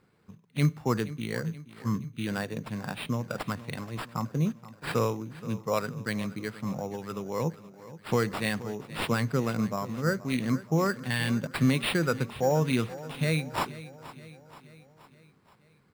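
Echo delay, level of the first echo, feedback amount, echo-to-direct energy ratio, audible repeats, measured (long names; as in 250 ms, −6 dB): 476 ms, −16.5 dB, 55%, −15.0 dB, 4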